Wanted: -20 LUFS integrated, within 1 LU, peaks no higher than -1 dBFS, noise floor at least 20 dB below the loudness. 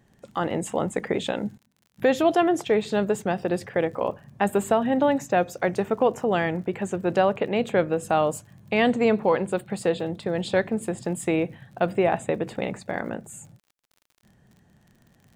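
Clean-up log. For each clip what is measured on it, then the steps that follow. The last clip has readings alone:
ticks 47/s; loudness -25.0 LUFS; peak -9.5 dBFS; loudness target -20.0 LUFS
-> de-click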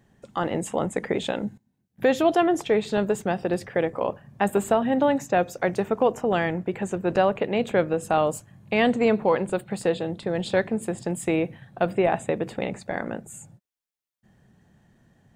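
ticks 0.065/s; loudness -25.0 LUFS; peak -9.5 dBFS; loudness target -20.0 LUFS
-> gain +5 dB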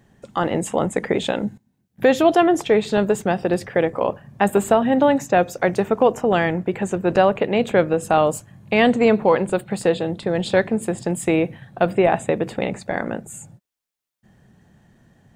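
loudness -20.0 LUFS; peak -4.5 dBFS; noise floor -69 dBFS

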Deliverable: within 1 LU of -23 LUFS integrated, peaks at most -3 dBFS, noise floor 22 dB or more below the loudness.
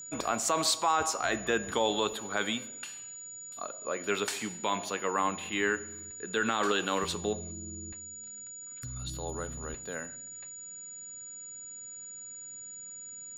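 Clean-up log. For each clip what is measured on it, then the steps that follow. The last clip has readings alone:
ticks 27/s; steady tone 6900 Hz; tone level -42 dBFS; loudness -33.0 LUFS; peak -15.5 dBFS; loudness target -23.0 LUFS
-> de-click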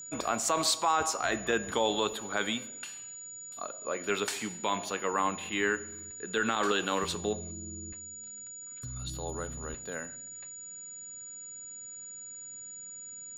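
ticks 0.075/s; steady tone 6900 Hz; tone level -42 dBFS
-> notch 6900 Hz, Q 30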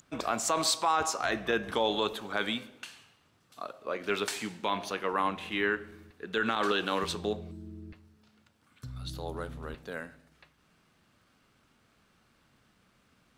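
steady tone none; loudness -31.5 LUFS; peak -16.0 dBFS; loudness target -23.0 LUFS
-> gain +8.5 dB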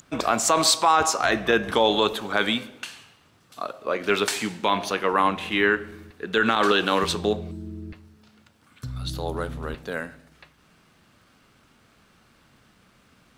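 loudness -23.0 LUFS; peak -7.5 dBFS; noise floor -60 dBFS

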